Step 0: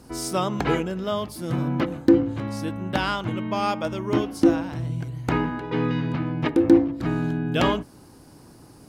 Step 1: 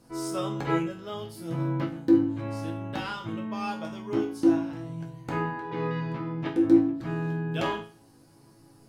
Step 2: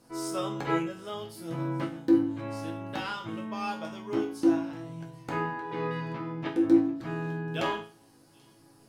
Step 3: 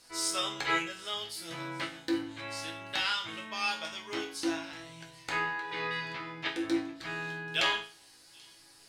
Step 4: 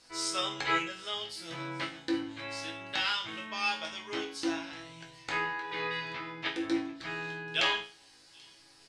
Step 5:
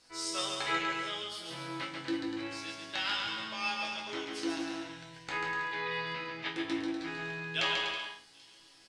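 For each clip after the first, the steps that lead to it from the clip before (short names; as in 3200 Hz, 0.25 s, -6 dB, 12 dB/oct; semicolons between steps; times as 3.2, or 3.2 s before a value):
resonator bank A2 major, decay 0.39 s; gain +7 dB
low shelf 200 Hz -7.5 dB; thin delay 0.784 s, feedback 66%, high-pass 4200 Hz, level -20.5 dB
ten-band EQ 125 Hz -11 dB, 250 Hz -11 dB, 500 Hz -4 dB, 1000 Hz -3 dB, 2000 Hz +7 dB, 4000 Hz +10 dB, 8000 Hz +7 dB
LPF 7200 Hz 12 dB/oct; doubler 22 ms -12 dB
bouncing-ball echo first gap 0.14 s, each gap 0.75×, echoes 5; gain -3.5 dB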